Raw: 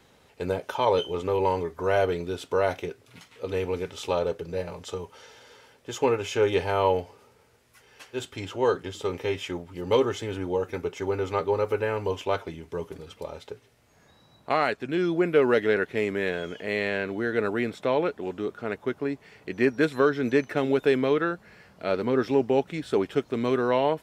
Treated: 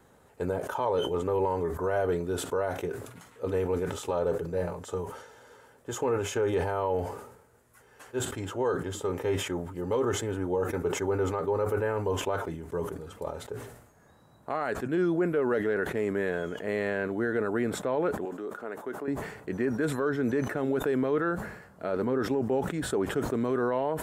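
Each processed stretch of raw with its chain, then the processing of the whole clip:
18.25–19.08 HPF 280 Hz + compressor 2:1, threshold -36 dBFS
whole clip: band shelf 3500 Hz -10.5 dB; limiter -19 dBFS; sustainer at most 70 dB/s

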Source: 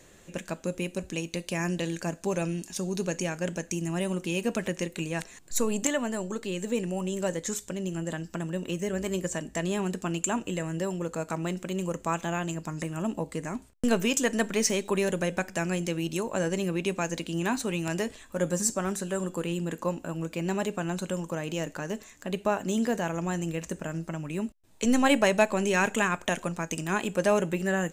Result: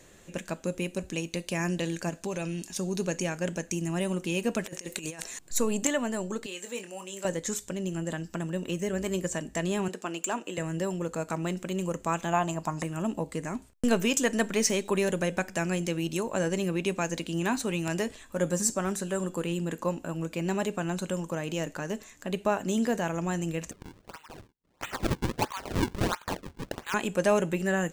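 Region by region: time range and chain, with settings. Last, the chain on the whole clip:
2.09–2.67 dynamic EQ 3400 Hz, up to +5 dB, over -53 dBFS, Q 1 + compressor 2.5:1, threshold -30 dBFS
4.64–5.39 tone controls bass -7 dB, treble +7 dB + negative-ratio compressor -37 dBFS, ratio -0.5
6.46–7.25 HPF 1200 Hz 6 dB/oct + doubler 25 ms -8 dB
9.88–10.58 HPF 340 Hz + high shelf 7200 Hz -5 dB + hard clip -19.5 dBFS
12.33–12.83 band shelf 860 Hz +9.5 dB 1.1 oct + mismatched tape noise reduction encoder only
23.71–26.94 Chebyshev high-pass 880 Hz, order 5 + decimation with a swept rate 40×, swing 160% 1.5 Hz + bell 12000 Hz -8 dB 0.24 oct
whole clip: dry

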